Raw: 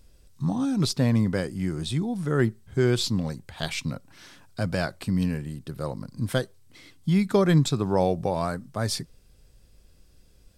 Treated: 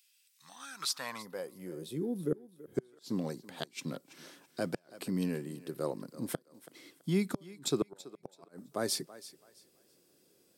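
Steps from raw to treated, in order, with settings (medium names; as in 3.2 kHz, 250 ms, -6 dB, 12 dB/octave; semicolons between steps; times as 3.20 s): high-pass sweep 2.6 kHz -> 350 Hz, 0.22–2.12 s; inverted gate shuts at -13 dBFS, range -40 dB; treble shelf 10 kHz +11.5 dB; thinning echo 330 ms, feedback 27%, high-pass 340 Hz, level -16 dB; time-frequency box 1.22–2.75 s, 570–9700 Hz -11 dB; peaking EQ 150 Hz +8 dB 1 oct; trim -6.5 dB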